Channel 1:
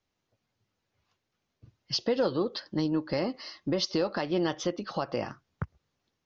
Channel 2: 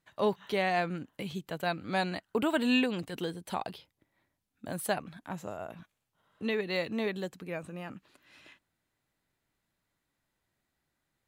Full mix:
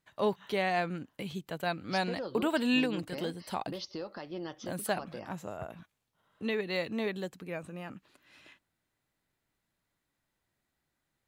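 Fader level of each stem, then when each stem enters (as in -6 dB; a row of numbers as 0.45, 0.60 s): -12.0, -1.0 dB; 0.00, 0.00 s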